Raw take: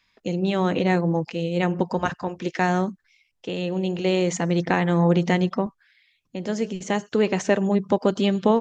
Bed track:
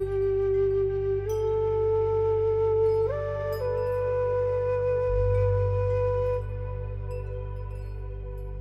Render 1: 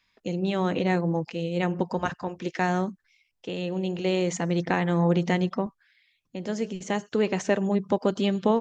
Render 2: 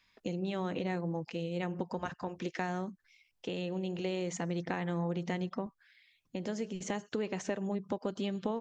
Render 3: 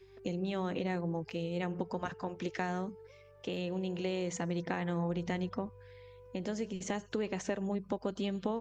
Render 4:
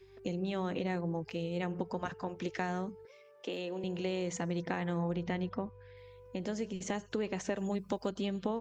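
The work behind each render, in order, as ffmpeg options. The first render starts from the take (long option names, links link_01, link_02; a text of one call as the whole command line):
ffmpeg -i in.wav -af "volume=-3.5dB" out.wav
ffmpeg -i in.wav -af "acompressor=threshold=-35dB:ratio=3" out.wav
ffmpeg -i in.wav -i bed.wav -filter_complex "[1:a]volume=-29dB[link_01];[0:a][link_01]amix=inputs=2:normalize=0" out.wav
ffmpeg -i in.wav -filter_complex "[0:a]asettb=1/sr,asplit=3[link_01][link_02][link_03];[link_01]atrim=end=3.054[link_04];[link_02]atrim=start=3.05:end=3.84,asetpts=PTS-STARTPTS,afade=type=in:duration=0.004:curve=qsin,afade=type=out:start_time=0.786:duration=0.004:curve=qsin,highpass=frequency=230:width=0.5412,highpass=frequency=230:width=1.3066[link_05];[link_03]atrim=start=3.836[link_06];[link_04][link_05]acrossfade=duration=0.004:curve1=hsin:curve2=qsin[link_07];[link_07][link_06]acrossfade=duration=0.004:curve1=qsin:curve2=hsin,asettb=1/sr,asplit=3[link_08][link_09][link_10];[link_08]atrim=end=5.164[link_11];[link_09]atrim=start=5.16:end=5.97,asetpts=PTS-STARTPTS,afade=type=in:duration=0.004:curve=qsin,afade=type=out:start_time=0.806:duration=0.004:curve=qsin,lowpass=4300[link_12];[link_10]atrim=start=5.966[link_13];[link_11][link_12]acrossfade=duration=0.004:curve1=hsin:curve2=qsin[link_14];[link_14][link_13]acrossfade=duration=0.004:curve1=qsin:curve2=hsin,asplit=3[link_15][link_16][link_17];[link_15]afade=type=out:start_time=7.56:duration=0.02[link_18];[link_16]highshelf=frequency=2700:gain=11,afade=type=in:start_time=7.56:duration=0.02,afade=type=out:start_time=8.08:duration=0.02[link_19];[link_17]afade=type=in:start_time=8.08:duration=0.02[link_20];[link_18][link_19][link_20]amix=inputs=3:normalize=0" out.wav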